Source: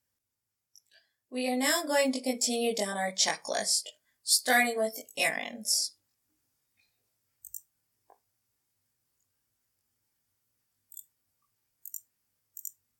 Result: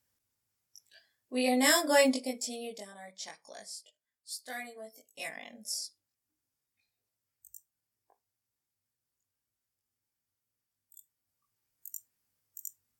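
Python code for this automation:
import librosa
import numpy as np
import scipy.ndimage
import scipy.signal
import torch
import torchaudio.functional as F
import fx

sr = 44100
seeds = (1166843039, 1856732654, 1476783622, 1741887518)

y = fx.gain(x, sr, db=fx.line((2.08, 2.5), (2.32, -6.0), (2.95, -17.0), (4.88, -17.0), (5.52, -9.0), (10.98, -9.0), (11.87, -2.0)))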